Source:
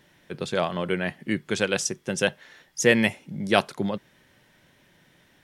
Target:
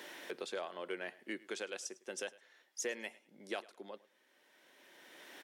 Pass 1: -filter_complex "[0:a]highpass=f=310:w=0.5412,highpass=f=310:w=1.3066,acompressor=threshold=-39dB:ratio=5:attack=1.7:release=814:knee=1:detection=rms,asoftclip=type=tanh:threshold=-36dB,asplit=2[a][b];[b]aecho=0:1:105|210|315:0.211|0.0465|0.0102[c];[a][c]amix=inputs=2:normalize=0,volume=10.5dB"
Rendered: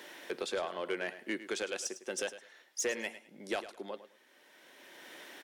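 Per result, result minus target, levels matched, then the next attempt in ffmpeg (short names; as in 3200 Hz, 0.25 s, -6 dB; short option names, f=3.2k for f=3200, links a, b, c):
compressor: peak gain reduction -7 dB; echo-to-direct +7.5 dB
-filter_complex "[0:a]highpass=f=310:w=0.5412,highpass=f=310:w=1.3066,acompressor=threshold=-47.5dB:ratio=5:attack=1.7:release=814:knee=1:detection=rms,asoftclip=type=tanh:threshold=-36dB,asplit=2[a][b];[b]aecho=0:1:105|210|315:0.211|0.0465|0.0102[c];[a][c]amix=inputs=2:normalize=0,volume=10.5dB"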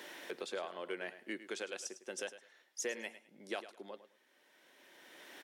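echo-to-direct +7.5 dB
-filter_complex "[0:a]highpass=f=310:w=0.5412,highpass=f=310:w=1.3066,acompressor=threshold=-47.5dB:ratio=5:attack=1.7:release=814:knee=1:detection=rms,asoftclip=type=tanh:threshold=-36dB,asplit=2[a][b];[b]aecho=0:1:105|210:0.0891|0.0196[c];[a][c]amix=inputs=2:normalize=0,volume=10.5dB"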